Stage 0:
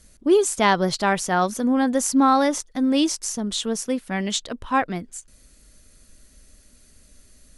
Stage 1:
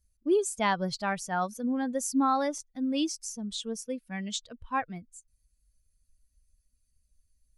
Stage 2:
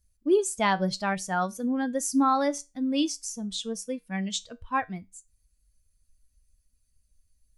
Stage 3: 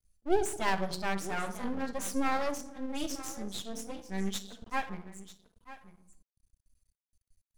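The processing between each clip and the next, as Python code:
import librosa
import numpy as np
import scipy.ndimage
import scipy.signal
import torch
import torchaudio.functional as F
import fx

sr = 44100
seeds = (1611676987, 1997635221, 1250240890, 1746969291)

y1 = fx.bin_expand(x, sr, power=1.5)
y1 = F.gain(torch.from_numpy(y1), -7.0).numpy()
y2 = fx.comb_fb(y1, sr, f0_hz=95.0, decay_s=0.23, harmonics='all', damping=0.0, mix_pct=50)
y2 = F.gain(torch.from_numpy(y2), 6.5).numpy()
y3 = y2 + 10.0 ** (-16.0 / 20.0) * np.pad(y2, (int(943 * sr / 1000.0), 0))[:len(y2)]
y3 = fx.room_shoebox(y3, sr, seeds[0], volume_m3=2400.0, walls='furnished', distance_m=1.2)
y3 = np.maximum(y3, 0.0)
y3 = F.gain(torch.from_numpy(y3), -3.0).numpy()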